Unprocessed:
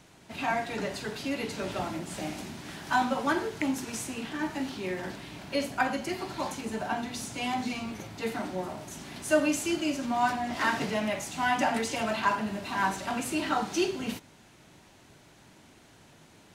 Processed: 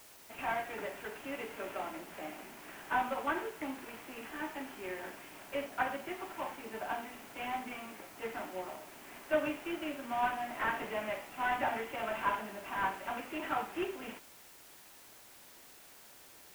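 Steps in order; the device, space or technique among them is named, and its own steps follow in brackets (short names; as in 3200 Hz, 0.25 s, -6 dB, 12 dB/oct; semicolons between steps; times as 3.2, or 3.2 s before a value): army field radio (BPF 390–2900 Hz; CVSD 16 kbps; white noise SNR 18 dB); gain -4.5 dB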